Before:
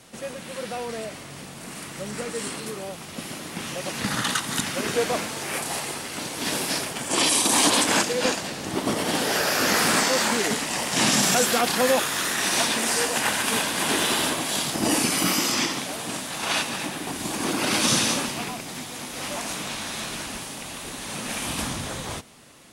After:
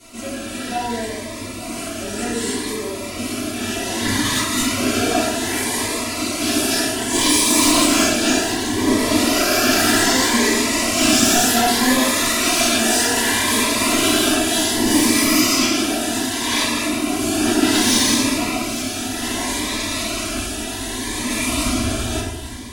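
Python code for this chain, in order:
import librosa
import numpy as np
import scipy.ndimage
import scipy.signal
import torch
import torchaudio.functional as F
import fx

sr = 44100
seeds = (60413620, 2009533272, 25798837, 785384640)

p1 = x + 0.99 * np.pad(x, (int(3.0 * sr / 1000.0), 0))[:len(x)]
p2 = 10.0 ** (-17.0 / 20.0) * np.tanh(p1 / 10.0 ** (-17.0 / 20.0))
p3 = p2 + fx.echo_single(p2, sr, ms=856, db=-14.0, dry=0)
p4 = fx.room_shoebox(p3, sr, seeds[0], volume_m3=230.0, walls='mixed', distance_m=3.4)
p5 = fx.notch_cascade(p4, sr, direction='rising', hz=0.65)
y = F.gain(torch.from_numpy(p5), -3.0).numpy()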